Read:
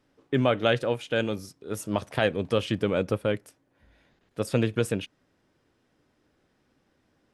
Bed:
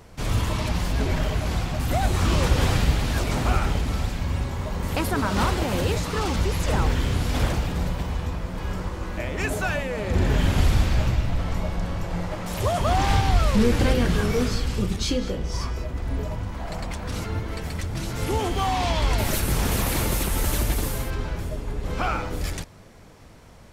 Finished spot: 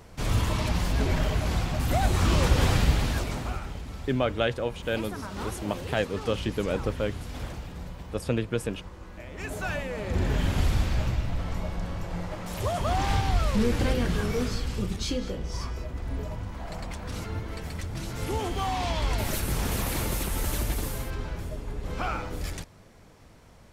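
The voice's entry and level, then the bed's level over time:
3.75 s, −3.0 dB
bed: 0:03.04 −1.5 dB
0:03.63 −13 dB
0:09.25 −13 dB
0:09.71 −5 dB

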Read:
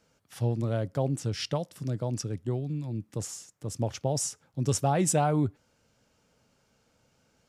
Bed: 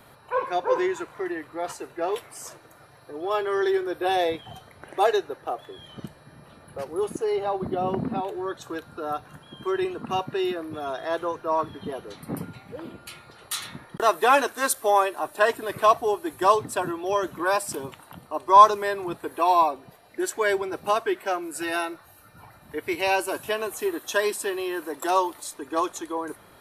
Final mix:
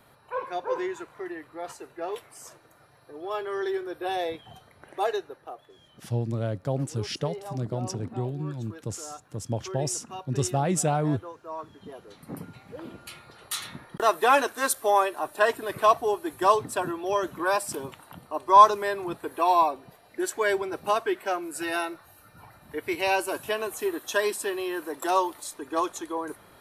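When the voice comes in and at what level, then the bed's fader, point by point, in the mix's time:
5.70 s, 0.0 dB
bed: 0:05.13 −6 dB
0:05.69 −12.5 dB
0:11.58 −12.5 dB
0:12.93 −1.5 dB

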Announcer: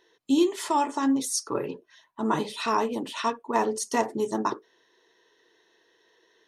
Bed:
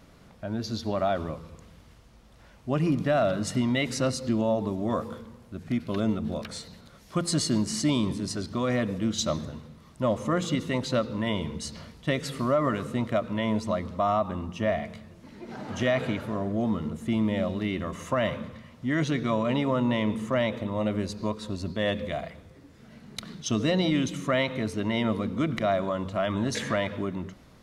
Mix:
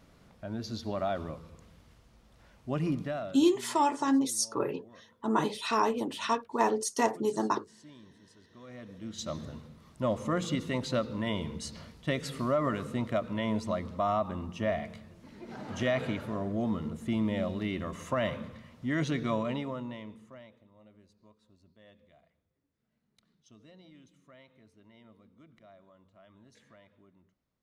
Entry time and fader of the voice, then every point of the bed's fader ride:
3.05 s, −2.0 dB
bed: 0:02.93 −5.5 dB
0:03.74 −28 dB
0:08.40 −28 dB
0:09.53 −4 dB
0:19.36 −4 dB
0:20.68 −31 dB

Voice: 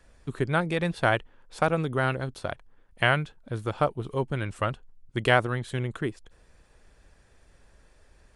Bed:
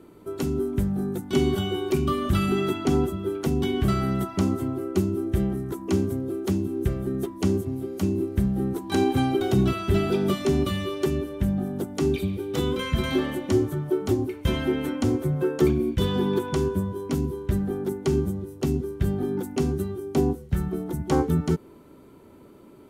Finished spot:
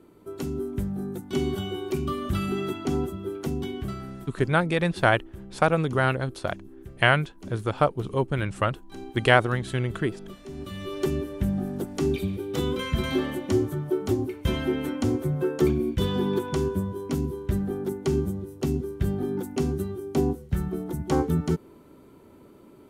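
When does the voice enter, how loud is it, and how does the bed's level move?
4.00 s, +3.0 dB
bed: 0:03.50 −4.5 dB
0:04.44 −18.5 dB
0:10.47 −18.5 dB
0:10.98 −1.5 dB

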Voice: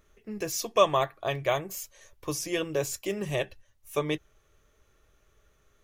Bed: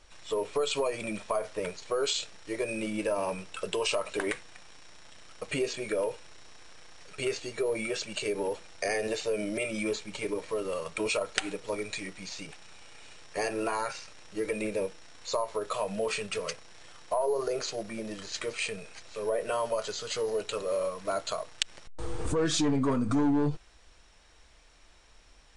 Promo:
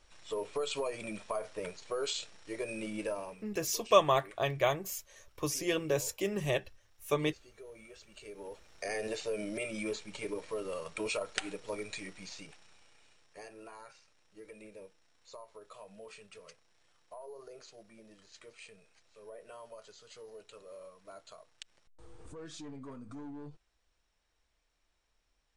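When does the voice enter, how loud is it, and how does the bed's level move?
3.15 s, −2.0 dB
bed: 0:03.10 −6 dB
0:03.48 −21 dB
0:08.03 −21 dB
0:09.00 −5.5 dB
0:12.25 −5.5 dB
0:13.54 −19.5 dB

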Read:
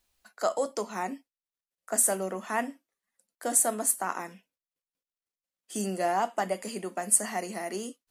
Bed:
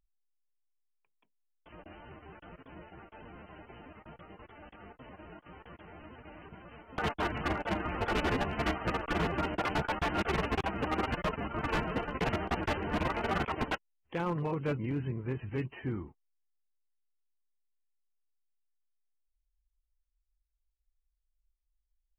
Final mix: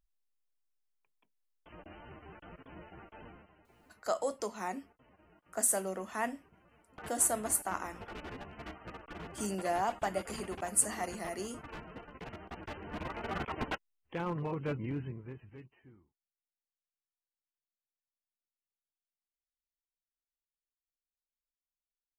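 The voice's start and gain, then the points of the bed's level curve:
3.65 s, −5.0 dB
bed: 0:03.27 −1 dB
0:03.55 −14.5 dB
0:12.38 −14.5 dB
0:13.65 −3 dB
0:14.95 −3 dB
0:16.12 −28.5 dB

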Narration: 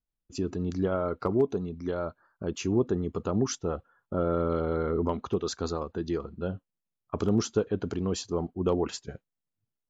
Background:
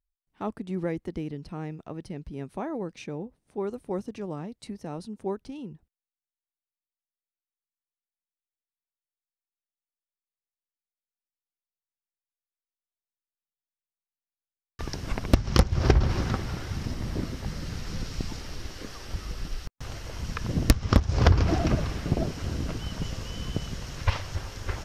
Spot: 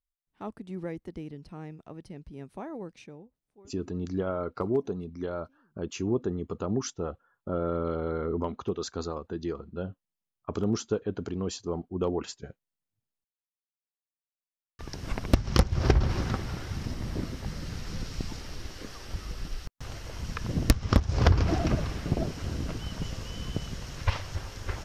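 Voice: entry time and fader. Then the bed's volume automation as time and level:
3.35 s, −2.5 dB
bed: 0:02.94 −6 dB
0:03.80 −30 dB
0:13.79 −30 dB
0:15.06 −2 dB

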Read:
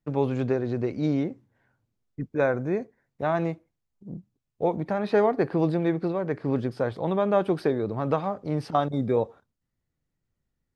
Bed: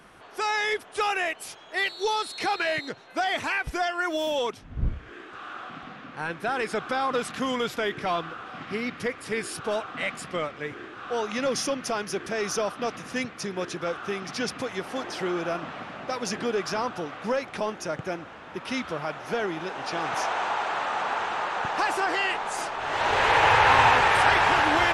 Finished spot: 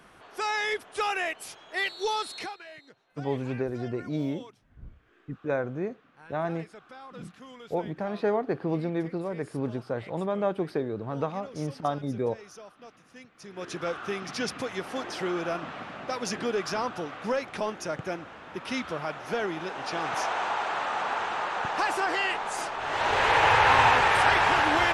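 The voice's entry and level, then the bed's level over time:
3.10 s, −5.0 dB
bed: 0:02.38 −2.5 dB
0:02.58 −19.5 dB
0:13.30 −19.5 dB
0:13.75 −1.5 dB

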